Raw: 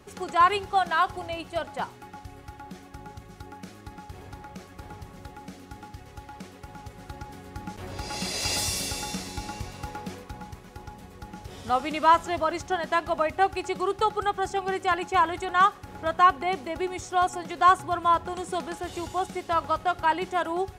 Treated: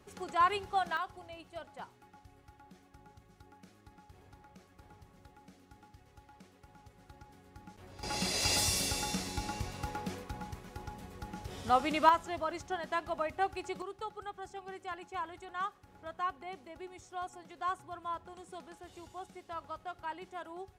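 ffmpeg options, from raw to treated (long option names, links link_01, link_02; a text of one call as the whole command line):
ffmpeg -i in.wav -af "asetnsamples=nb_out_samples=441:pad=0,asendcmd='0.97 volume volume -15dB;8.03 volume volume -2.5dB;12.09 volume volume -9.5dB;13.82 volume volume -17dB',volume=-8dB" out.wav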